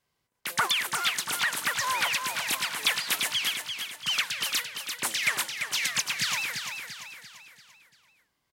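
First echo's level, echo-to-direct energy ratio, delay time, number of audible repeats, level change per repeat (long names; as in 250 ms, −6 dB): −6.5 dB, −5.5 dB, 342 ms, 5, −6.5 dB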